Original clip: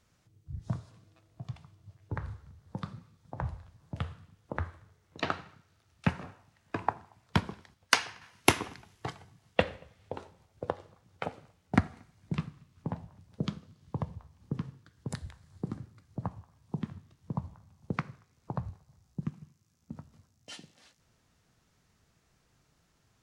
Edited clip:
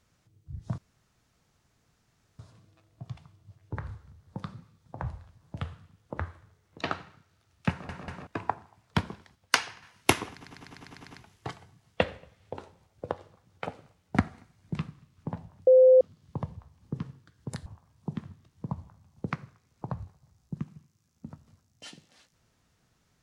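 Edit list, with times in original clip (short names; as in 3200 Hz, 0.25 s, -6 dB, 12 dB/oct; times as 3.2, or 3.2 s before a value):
0.78 insert room tone 1.61 s
6.09 stutter in place 0.19 s, 3 plays
8.7 stutter 0.10 s, 9 plays
13.26–13.6 bleep 515 Hz -13 dBFS
15.25–16.32 cut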